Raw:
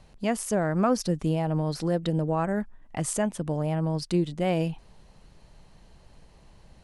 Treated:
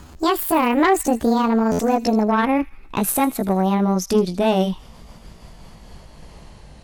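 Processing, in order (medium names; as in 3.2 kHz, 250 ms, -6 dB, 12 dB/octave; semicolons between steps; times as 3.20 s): pitch bend over the whole clip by +8.5 st ending unshifted; in parallel at -2 dB: compression, threshold -38 dBFS, peak gain reduction 17.5 dB; on the sum: feedback echo behind a high-pass 80 ms, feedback 55%, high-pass 2.9 kHz, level -15.5 dB; Chebyshev shaper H 4 -16 dB, 5 -21 dB, 6 -31 dB, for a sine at -11 dBFS; buffer glitch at 1.71 s, samples 512, times 6; trim +5 dB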